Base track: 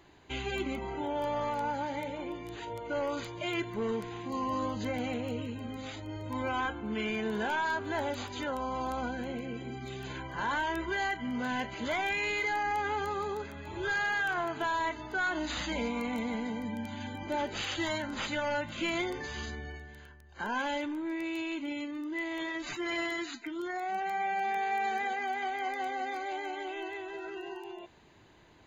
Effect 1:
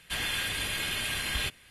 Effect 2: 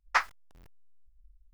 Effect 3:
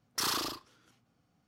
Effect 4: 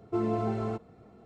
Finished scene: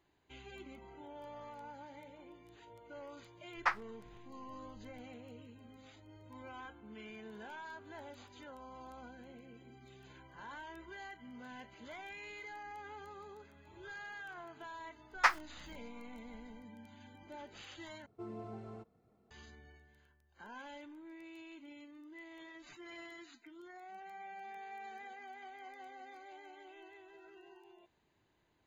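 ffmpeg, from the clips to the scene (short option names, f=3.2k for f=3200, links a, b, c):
-filter_complex "[2:a]asplit=2[a][b];[0:a]volume=-17dB[c];[a]aemphasis=mode=reproduction:type=75kf[d];[c]asplit=2[e][f];[e]atrim=end=18.064[g];[4:a]atrim=end=1.25,asetpts=PTS-STARTPTS,volume=-17dB[h];[f]atrim=start=19.306[i];[d]atrim=end=1.53,asetpts=PTS-STARTPTS,volume=-4.5dB,afade=t=in:d=0.004:c=hsin,afade=t=out:st=1.526:d=0.004:c=hsin,adelay=3510[j];[b]atrim=end=1.53,asetpts=PTS-STARTPTS,volume=-1.5dB,afade=t=in:d=0.004:c=hsin,afade=t=out:st=1.526:d=0.004:c=hsin,adelay=15090[k];[g][h]acrossfade=d=0.004:c1=hsin:c2=hsin[l];[l][i]acrossfade=d=0.004:c1=hsin:c2=hsin[m];[m][j][k]amix=inputs=3:normalize=0"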